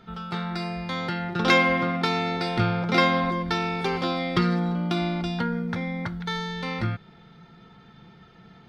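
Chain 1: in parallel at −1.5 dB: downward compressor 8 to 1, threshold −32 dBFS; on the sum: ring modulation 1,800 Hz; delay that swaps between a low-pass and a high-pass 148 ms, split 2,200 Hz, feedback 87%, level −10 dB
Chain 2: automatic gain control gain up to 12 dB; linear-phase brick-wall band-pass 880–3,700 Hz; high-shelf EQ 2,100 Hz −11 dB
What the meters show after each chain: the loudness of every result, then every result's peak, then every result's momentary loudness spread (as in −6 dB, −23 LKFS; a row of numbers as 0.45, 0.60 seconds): −24.0, −26.5 LKFS; −4.0, −8.0 dBFS; 18, 11 LU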